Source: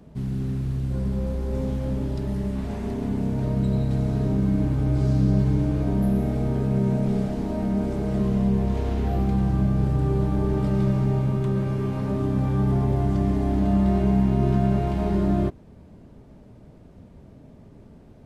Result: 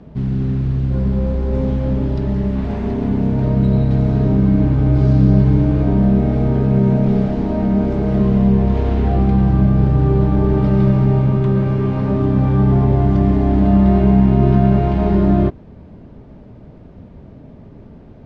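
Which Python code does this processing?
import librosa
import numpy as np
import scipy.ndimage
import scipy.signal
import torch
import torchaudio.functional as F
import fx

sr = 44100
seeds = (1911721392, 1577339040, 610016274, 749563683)

y = fx.air_absorb(x, sr, metres=170.0)
y = y * librosa.db_to_amplitude(8.5)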